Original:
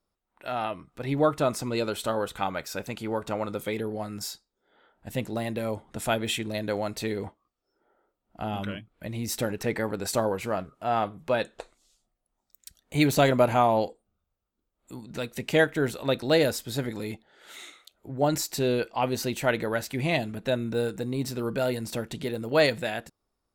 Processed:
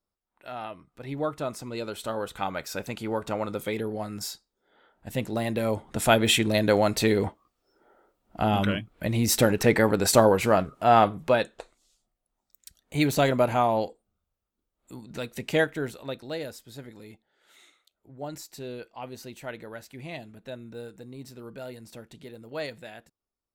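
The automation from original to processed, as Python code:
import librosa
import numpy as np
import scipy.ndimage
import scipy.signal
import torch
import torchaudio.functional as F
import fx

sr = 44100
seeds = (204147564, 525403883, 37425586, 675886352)

y = fx.gain(x, sr, db=fx.line((1.67, -6.5), (2.7, 0.5), (5.11, 0.5), (6.36, 8.0), (11.14, 8.0), (11.57, -1.5), (15.57, -1.5), (16.36, -12.5)))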